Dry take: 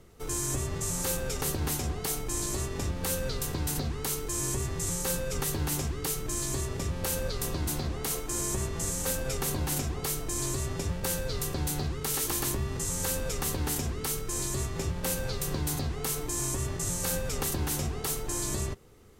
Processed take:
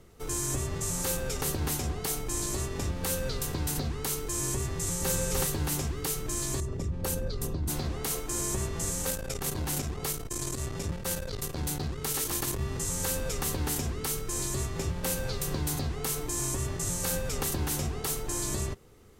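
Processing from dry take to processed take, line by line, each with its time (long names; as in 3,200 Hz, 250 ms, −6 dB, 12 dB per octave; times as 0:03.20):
0:04.71–0:05.16: delay throw 300 ms, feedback 15%, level −1.5 dB
0:06.60–0:07.70: spectral envelope exaggerated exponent 1.5
0:09.05–0:12.61: saturating transformer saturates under 190 Hz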